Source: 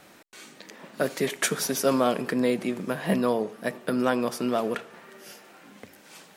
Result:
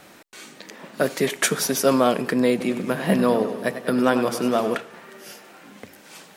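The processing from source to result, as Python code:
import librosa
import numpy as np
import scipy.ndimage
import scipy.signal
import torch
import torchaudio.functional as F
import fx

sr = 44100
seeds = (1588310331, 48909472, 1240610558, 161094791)

y = fx.echo_warbled(x, sr, ms=98, feedback_pct=63, rate_hz=2.8, cents=84, wet_db=-11, at=(2.5, 4.78))
y = y * 10.0 ** (4.5 / 20.0)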